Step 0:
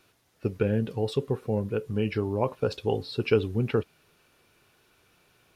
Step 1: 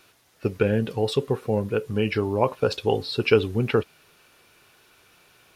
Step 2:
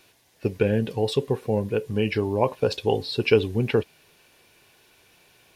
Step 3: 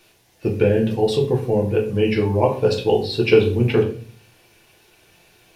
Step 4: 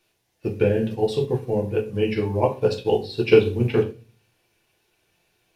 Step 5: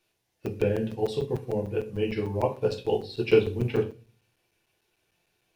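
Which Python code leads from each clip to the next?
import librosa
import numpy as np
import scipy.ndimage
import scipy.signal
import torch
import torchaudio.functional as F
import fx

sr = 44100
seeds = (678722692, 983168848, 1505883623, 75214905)

y1 = fx.low_shelf(x, sr, hz=470.0, db=-6.5)
y1 = y1 * librosa.db_to_amplitude(8.0)
y2 = fx.peak_eq(y1, sr, hz=1300.0, db=-12.5, octaves=0.24)
y3 = fx.room_shoebox(y2, sr, seeds[0], volume_m3=37.0, walls='mixed', distance_m=0.67)
y4 = fx.upward_expand(y3, sr, threshold_db=-36.0, expansion=1.5)
y5 = fx.buffer_crackle(y4, sr, first_s=0.46, period_s=0.15, block=256, kind='zero')
y5 = y5 * librosa.db_to_amplitude(-5.5)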